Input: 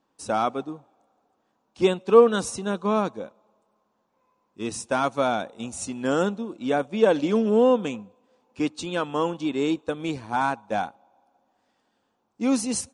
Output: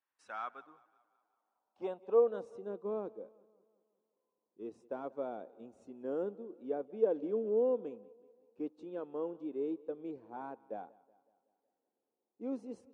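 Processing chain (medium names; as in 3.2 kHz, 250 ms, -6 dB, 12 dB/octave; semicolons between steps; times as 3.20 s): band-pass sweep 2 kHz -> 420 Hz, 0.02–2.74 s; modulated delay 186 ms, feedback 52%, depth 53 cents, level -23 dB; trim -9 dB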